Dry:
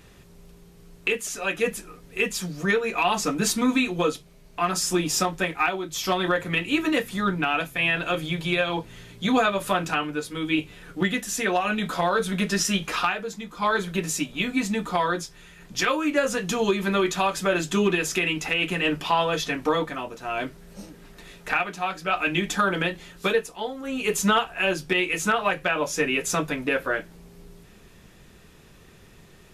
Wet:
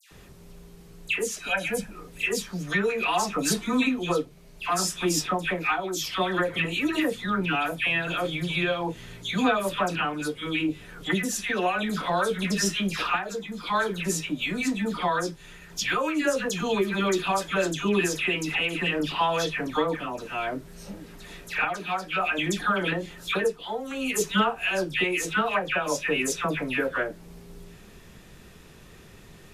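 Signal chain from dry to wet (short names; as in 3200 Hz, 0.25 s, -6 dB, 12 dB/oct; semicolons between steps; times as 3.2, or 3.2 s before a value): 1.37–1.8 comb 1.3 ms, depth 77%; dispersion lows, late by 0.115 s, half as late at 1800 Hz; in parallel at -1 dB: compressor, threshold -34 dBFS, peak gain reduction 17.5 dB; on the sum: gain -3.5 dB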